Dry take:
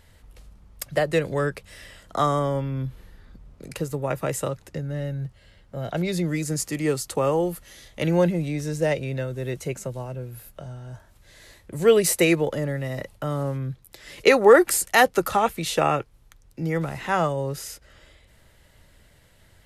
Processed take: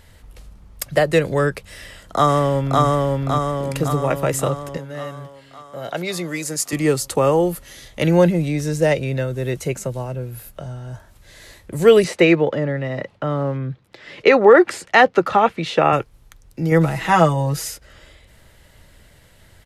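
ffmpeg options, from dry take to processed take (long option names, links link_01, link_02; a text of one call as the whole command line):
ffmpeg -i in.wav -filter_complex "[0:a]asplit=2[link_01][link_02];[link_02]afade=type=in:start_time=1.72:duration=0.01,afade=type=out:start_time=2.82:duration=0.01,aecho=0:1:560|1120|1680|2240|2800|3360|3920|4480|5040:0.891251|0.534751|0.32085|0.19251|0.115506|0.0693037|0.0415822|0.0249493|0.0149696[link_03];[link_01][link_03]amix=inputs=2:normalize=0,asettb=1/sr,asplit=3[link_04][link_05][link_06];[link_04]atrim=end=4.774[link_07];[link_05]atrim=start=4.77:end=6.73,asetpts=PTS-STARTPTS,afade=type=in:duration=0.004:curve=qsin,afade=type=out:start_time=1.956:duration=0.004:curve=qsin,highpass=frequency=580:poles=1[link_08];[link_06]atrim=start=6.726[link_09];[link_07][link_08]acrossfade=duration=0.004:curve1=hsin:curve2=qsin[link_10];[link_10][link_09]acrossfade=duration=0.004:curve1=qsin:curve2=hsin,asettb=1/sr,asplit=3[link_11][link_12][link_13];[link_11]atrim=end=12.044[link_14];[link_12]atrim=start=12.04:end=15.93,asetpts=PTS-STARTPTS,afade=type=in:duration=0.004:curve=qsin,afade=type=out:start_time=3.886:duration=0.004:curve=qsin,highpass=130,lowpass=3200[link_15];[link_13]atrim=start=15.926[link_16];[link_14][link_15]acrossfade=duration=0.004:curve1=hsin:curve2=qsin[link_17];[link_17][link_16]acrossfade=duration=0.004:curve1=qsin:curve2=hsin,asettb=1/sr,asplit=3[link_18][link_19][link_20];[link_18]atrim=end=16.714[link_21];[link_19]atrim=start=16.71:end=17.7,asetpts=PTS-STARTPTS,afade=type=in:duration=0.004:curve=qsin,afade=type=out:start_time=0.986:duration=0.004:curve=qsin,aecho=1:1:6.2:0.83,atrim=end_sample=43659[link_22];[link_20]atrim=start=17.696[link_23];[link_21][link_22]acrossfade=duration=0.004:curve1=hsin:curve2=qsin[link_24];[link_24][link_23]acrossfade=duration=0.004:curve1=qsin:curve2=hsin,alimiter=level_in=7dB:limit=-1dB:release=50:level=0:latency=1,volume=-1dB" out.wav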